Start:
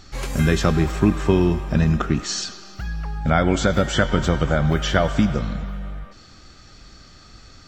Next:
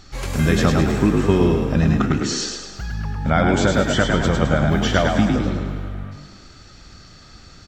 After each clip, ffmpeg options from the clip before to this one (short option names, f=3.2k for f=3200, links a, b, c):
-filter_complex "[0:a]asplit=7[a][b][c][d][e][f][g];[b]adelay=105,afreqshift=48,volume=-4dB[h];[c]adelay=210,afreqshift=96,volume=-10.6dB[i];[d]adelay=315,afreqshift=144,volume=-17.1dB[j];[e]adelay=420,afreqshift=192,volume=-23.7dB[k];[f]adelay=525,afreqshift=240,volume=-30.2dB[l];[g]adelay=630,afreqshift=288,volume=-36.8dB[m];[a][h][i][j][k][l][m]amix=inputs=7:normalize=0"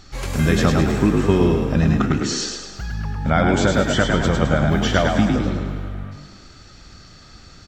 -af anull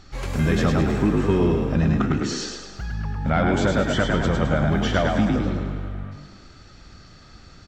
-af "acontrast=61,highshelf=f=4.6k:g=-7.5,volume=-8dB"